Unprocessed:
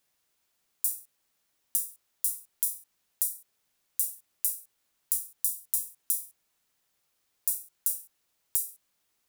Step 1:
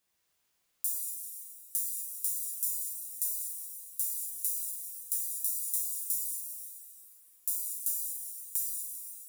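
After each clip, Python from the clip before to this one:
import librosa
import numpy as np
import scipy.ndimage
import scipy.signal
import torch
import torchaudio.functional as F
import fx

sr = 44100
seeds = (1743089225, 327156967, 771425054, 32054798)

y = fx.rev_plate(x, sr, seeds[0], rt60_s=2.7, hf_ratio=0.9, predelay_ms=0, drr_db=-4.0)
y = y * librosa.db_to_amplitude(-5.5)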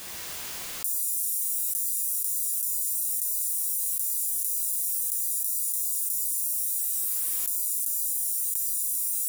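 y = fx.env_flatten(x, sr, amount_pct=100)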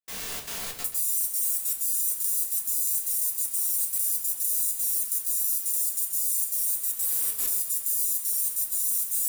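y = fx.step_gate(x, sr, bpm=191, pattern='.xxxx.xxx.x', floor_db=-60.0, edge_ms=4.5)
y = fx.room_shoebox(y, sr, seeds[1], volume_m3=170.0, walls='furnished', distance_m=1.6)
y = fx.echo_crushed(y, sr, ms=131, feedback_pct=55, bits=7, wet_db=-9.0)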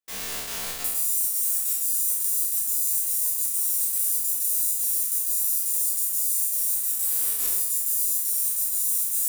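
y = fx.spec_trails(x, sr, decay_s=1.08)
y = fx.peak_eq(y, sr, hz=130.0, db=-3.5, octaves=0.62)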